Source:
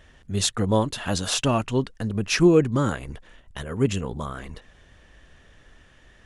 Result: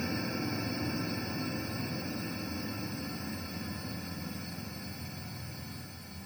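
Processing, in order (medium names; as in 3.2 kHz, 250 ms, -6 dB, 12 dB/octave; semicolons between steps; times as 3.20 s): spectrum inverted on a logarithmic axis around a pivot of 590 Hz; Paulstretch 24×, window 1.00 s, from 4.49 s; reverse echo 407 ms -3 dB; trim +3.5 dB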